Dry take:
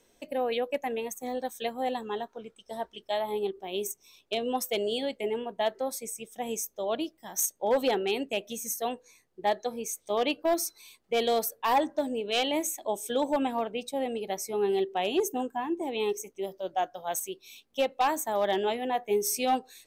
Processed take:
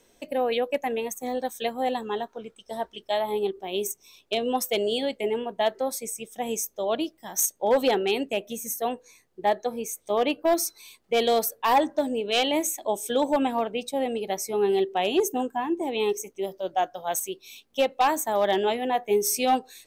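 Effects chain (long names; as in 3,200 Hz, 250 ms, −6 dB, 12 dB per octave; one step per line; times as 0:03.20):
0:08.28–0:10.46: dynamic equaliser 4,700 Hz, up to −6 dB, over −48 dBFS, Q 0.8
level +4 dB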